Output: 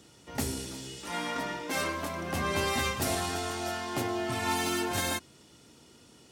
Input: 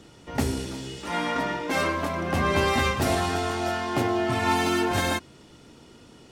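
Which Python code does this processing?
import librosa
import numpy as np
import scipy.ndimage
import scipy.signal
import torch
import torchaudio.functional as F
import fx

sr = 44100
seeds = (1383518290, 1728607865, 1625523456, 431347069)

y = scipy.signal.sosfilt(scipy.signal.butter(2, 55.0, 'highpass', fs=sr, output='sos'), x)
y = fx.high_shelf(y, sr, hz=4700.0, db=11.5)
y = y * 10.0 ** (-7.5 / 20.0)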